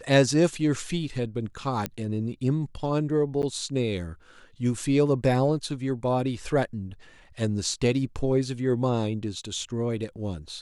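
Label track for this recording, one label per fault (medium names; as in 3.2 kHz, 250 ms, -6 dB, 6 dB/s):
1.860000	1.860000	pop -11 dBFS
3.420000	3.430000	dropout 9.7 ms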